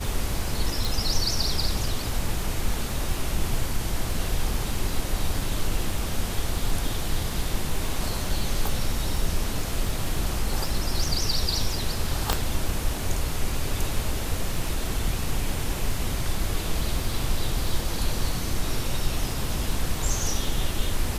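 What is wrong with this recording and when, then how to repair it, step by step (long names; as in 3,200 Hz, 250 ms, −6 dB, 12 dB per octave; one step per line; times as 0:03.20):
surface crackle 27 per second −31 dBFS
0:00.85: click
0:12.33: click −6 dBFS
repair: click removal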